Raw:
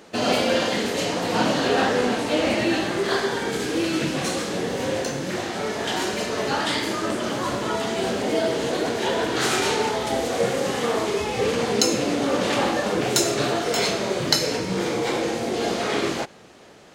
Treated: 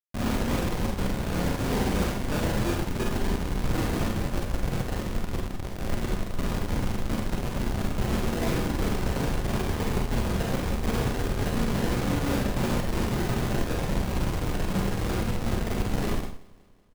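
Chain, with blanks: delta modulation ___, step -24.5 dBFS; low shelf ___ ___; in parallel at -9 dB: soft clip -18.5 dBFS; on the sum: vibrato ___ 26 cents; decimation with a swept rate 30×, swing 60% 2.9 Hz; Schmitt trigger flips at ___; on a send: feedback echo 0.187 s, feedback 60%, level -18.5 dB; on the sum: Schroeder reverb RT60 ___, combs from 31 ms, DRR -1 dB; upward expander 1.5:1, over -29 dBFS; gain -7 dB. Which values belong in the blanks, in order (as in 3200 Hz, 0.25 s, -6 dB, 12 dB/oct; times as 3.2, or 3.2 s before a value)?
16 kbps, 170 Hz, +10 dB, 4.2 Hz, -18 dBFS, 0.44 s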